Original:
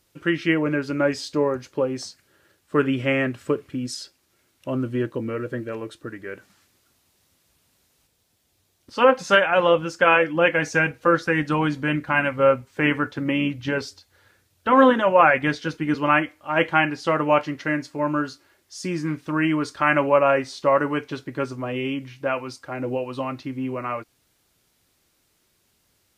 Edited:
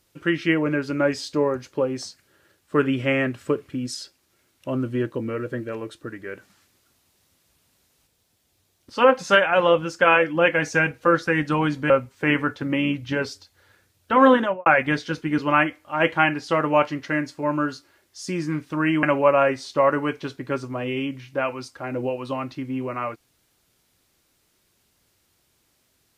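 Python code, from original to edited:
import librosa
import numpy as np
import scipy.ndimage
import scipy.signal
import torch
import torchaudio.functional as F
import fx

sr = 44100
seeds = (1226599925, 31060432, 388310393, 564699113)

y = fx.studio_fade_out(x, sr, start_s=14.95, length_s=0.27)
y = fx.edit(y, sr, fx.cut(start_s=11.9, length_s=0.56),
    fx.cut(start_s=19.59, length_s=0.32), tone=tone)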